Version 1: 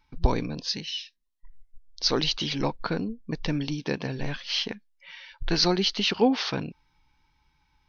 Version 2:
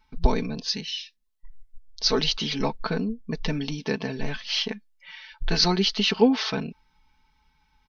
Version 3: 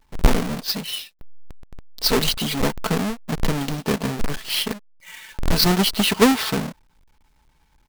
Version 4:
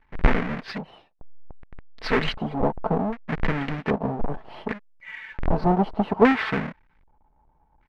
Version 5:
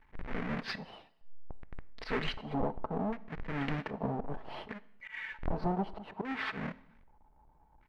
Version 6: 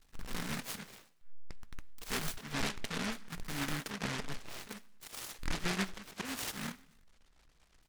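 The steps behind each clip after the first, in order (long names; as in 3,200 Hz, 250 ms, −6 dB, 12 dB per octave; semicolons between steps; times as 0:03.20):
comb filter 4.6 ms, depth 67%
each half-wave held at its own peak
auto-filter low-pass square 0.64 Hz 800–2,000 Hz; level −3 dB
downward compressor 5 to 1, threshold −28 dBFS, peak gain reduction 16 dB; volume swells 113 ms; on a send at −16.5 dB: convolution reverb RT60 0.85 s, pre-delay 4 ms; on the sum: level −1.5 dB
flanger 0.54 Hz, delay 2.9 ms, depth 7.3 ms, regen +77%; short delay modulated by noise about 1,500 Hz, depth 0.41 ms; level +1.5 dB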